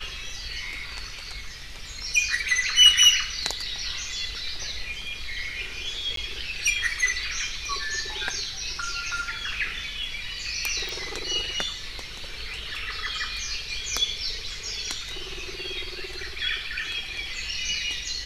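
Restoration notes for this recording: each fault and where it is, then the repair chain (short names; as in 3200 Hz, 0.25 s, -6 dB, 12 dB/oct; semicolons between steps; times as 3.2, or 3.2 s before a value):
6.16–6.17 gap 13 ms
10.89 pop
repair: de-click; interpolate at 6.16, 13 ms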